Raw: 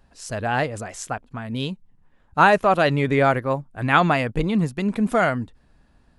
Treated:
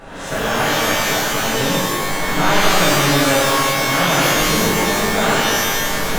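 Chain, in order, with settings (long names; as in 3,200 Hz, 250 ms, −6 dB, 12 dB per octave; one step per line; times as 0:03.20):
compressor on every frequency bin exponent 0.4
camcorder AGC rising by 15 dB per second
reverb with rising layers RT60 1.5 s, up +12 semitones, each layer −2 dB, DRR −9.5 dB
level −14.5 dB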